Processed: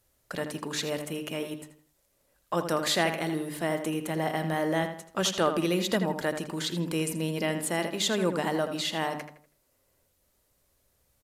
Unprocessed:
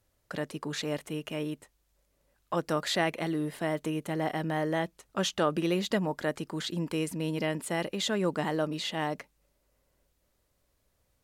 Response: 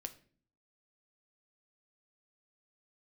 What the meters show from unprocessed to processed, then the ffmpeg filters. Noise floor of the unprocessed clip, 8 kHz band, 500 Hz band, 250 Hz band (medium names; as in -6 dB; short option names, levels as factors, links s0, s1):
-74 dBFS, +6.5 dB, +2.0 dB, +1.0 dB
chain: -filter_complex "[0:a]bandreject=f=50:t=h:w=6,bandreject=f=100:t=h:w=6,bandreject=f=150:t=h:w=6,bandreject=f=200:t=h:w=6,bandreject=f=250:t=h:w=6,bandreject=f=300:t=h:w=6,crystalizer=i=1:c=0,asplit=2[s0][s1];[s1]adelay=81,lowpass=f=3600:p=1,volume=0.398,asplit=2[s2][s3];[s3]adelay=81,lowpass=f=3600:p=1,volume=0.38,asplit=2[s4][s5];[s5]adelay=81,lowpass=f=3600:p=1,volume=0.38,asplit=2[s6][s7];[s7]adelay=81,lowpass=f=3600:p=1,volume=0.38[s8];[s2][s4][s6][s8]amix=inputs=4:normalize=0[s9];[s0][s9]amix=inputs=2:normalize=0,volume=1.19" -ar 32000 -c:a aac -b:a 96k